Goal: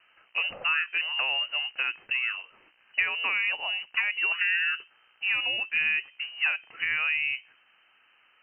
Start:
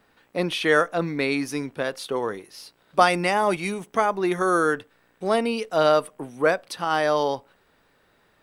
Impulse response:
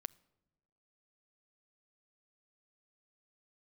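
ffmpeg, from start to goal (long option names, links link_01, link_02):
-filter_complex "[0:a]acrossover=split=190|1700[link_01][link_02][link_03];[link_01]acompressor=threshold=-46dB:ratio=4[link_04];[link_02]acompressor=threshold=-25dB:ratio=4[link_05];[link_03]acompressor=threshold=-40dB:ratio=4[link_06];[link_04][link_05][link_06]amix=inputs=3:normalize=0,lowpass=frequency=2600:width_type=q:width=0.5098,lowpass=frequency=2600:width_type=q:width=0.6013,lowpass=frequency=2600:width_type=q:width=0.9,lowpass=frequency=2600:width_type=q:width=2.563,afreqshift=-3100"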